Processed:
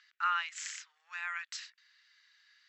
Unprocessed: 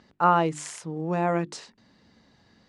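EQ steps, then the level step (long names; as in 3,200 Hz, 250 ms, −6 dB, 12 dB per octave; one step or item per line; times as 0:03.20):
Butterworth high-pass 1,500 Hz 36 dB per octave
linear-phase brick-wall low-pass 8,000 Hz
high-shelf EQ 5,400 Hz −8.5 dB
+2.5 dB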